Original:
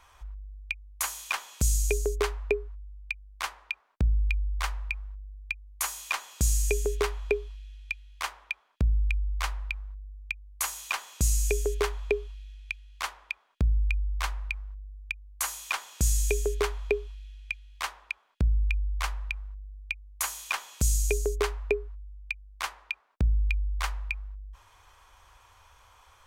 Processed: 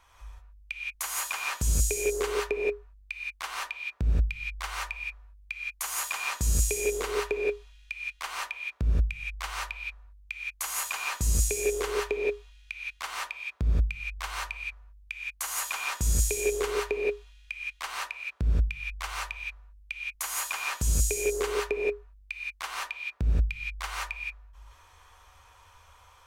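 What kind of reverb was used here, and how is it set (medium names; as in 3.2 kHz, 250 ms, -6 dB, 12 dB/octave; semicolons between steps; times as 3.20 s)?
gated-style reverb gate 200 ms rising, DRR -4 dB; trim -4 dB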